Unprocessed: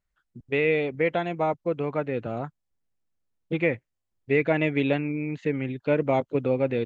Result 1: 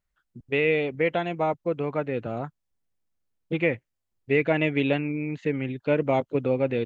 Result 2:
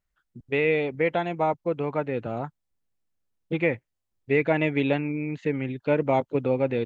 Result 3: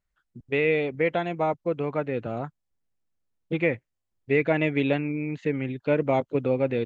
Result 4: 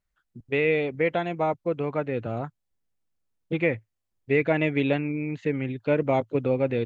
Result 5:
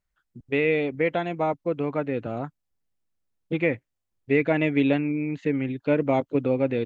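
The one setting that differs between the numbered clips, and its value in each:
dynamic bell, frequency: 2.9 kHz, 880 Hz, 9.1 kHz, 110 Hz, 280 Hz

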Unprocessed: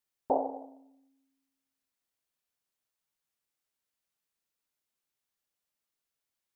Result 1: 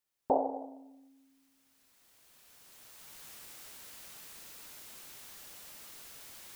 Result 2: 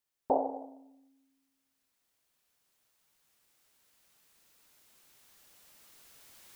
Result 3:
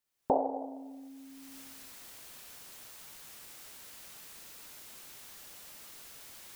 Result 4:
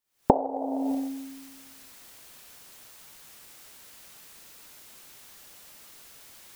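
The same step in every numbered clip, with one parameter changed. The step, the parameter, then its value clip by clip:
recorder AGC, rising by: 13 dB/s, 5.1 dB/s, 32 dB/s, 88 dB/s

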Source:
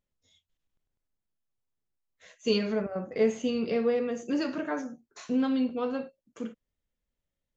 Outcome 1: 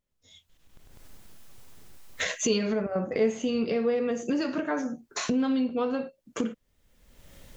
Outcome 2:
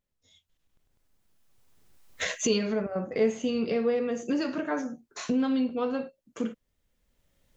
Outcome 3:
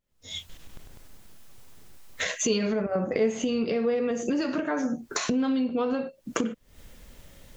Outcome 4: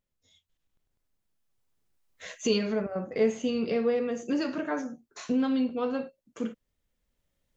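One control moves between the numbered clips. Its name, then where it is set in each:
recorder AGC, rising by: 34 dB/s, 13 dB/s, 86 dB/s, 5.2 dB/s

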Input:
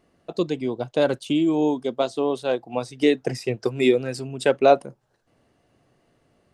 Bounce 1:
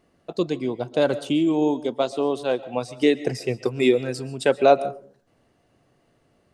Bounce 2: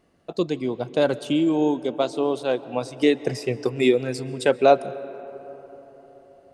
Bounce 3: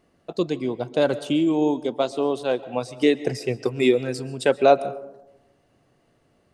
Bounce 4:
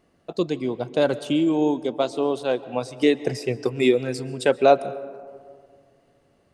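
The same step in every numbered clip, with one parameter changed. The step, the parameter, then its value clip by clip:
algorithmic reverb, RT60: 0.43 s, 4.5 s, 0.95 s, 2.1 s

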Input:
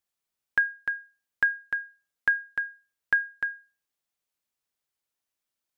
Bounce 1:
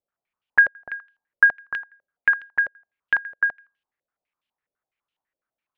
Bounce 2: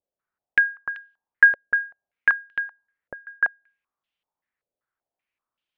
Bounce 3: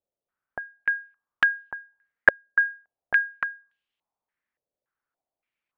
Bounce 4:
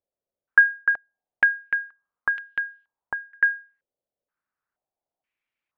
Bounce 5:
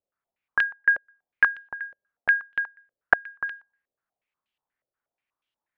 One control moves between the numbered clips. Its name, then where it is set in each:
step-sequenced low-pass, rate: 12 Hz, 5.2 Hz, 3.5 Hz, 2.1 Hz, 8.3 Hz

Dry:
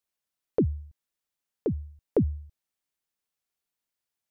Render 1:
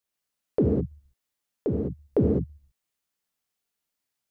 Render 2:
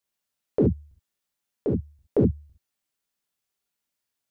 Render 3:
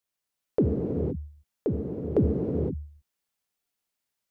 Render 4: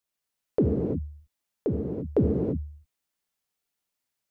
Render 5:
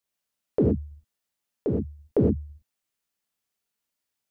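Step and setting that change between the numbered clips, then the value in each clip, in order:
gated-style reverb, gate: 230 ms, 90 ms, 540 ms, 370 ms, 140 ms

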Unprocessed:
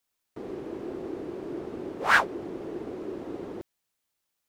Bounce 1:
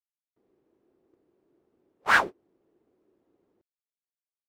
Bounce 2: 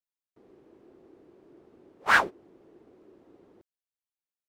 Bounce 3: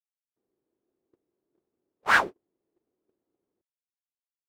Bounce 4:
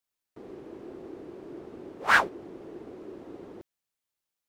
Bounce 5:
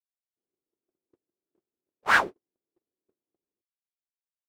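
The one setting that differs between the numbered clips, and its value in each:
gate, range: -34 dB, -20 dB, -46 dB, -7 dB, -58 dB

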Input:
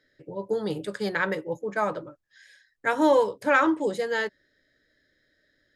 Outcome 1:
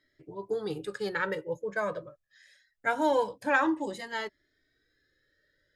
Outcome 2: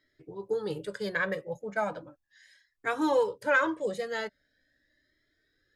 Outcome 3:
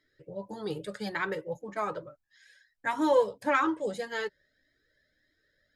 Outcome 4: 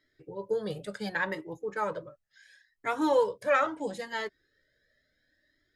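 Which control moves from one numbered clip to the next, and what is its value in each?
Shepard-style flanger, rate: 0.24 Hz, 0.39 Hz, 1.7 Hz, 0.72 Hz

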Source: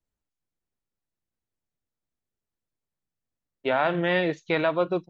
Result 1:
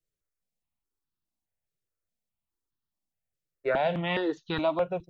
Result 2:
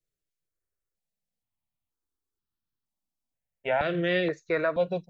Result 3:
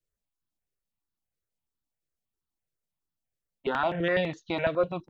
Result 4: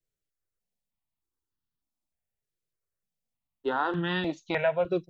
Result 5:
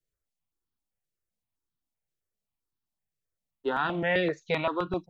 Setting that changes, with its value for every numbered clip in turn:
stepped phaser, rate: 4.8 Hz, 2.1 Hz, 12 Hz, 3.3 Hz, 7.7 Hz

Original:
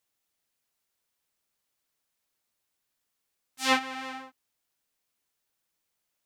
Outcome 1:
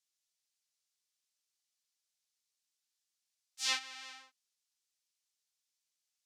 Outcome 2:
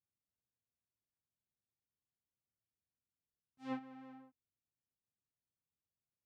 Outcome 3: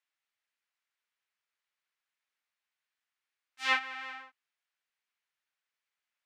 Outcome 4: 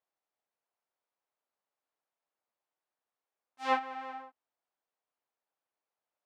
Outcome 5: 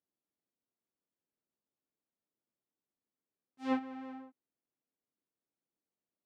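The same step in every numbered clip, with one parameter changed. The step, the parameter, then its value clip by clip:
band-pass filter, frequency: 5.6 kHz, 100 Hz, 1.9 kHz, 740 Hz, 270 Hz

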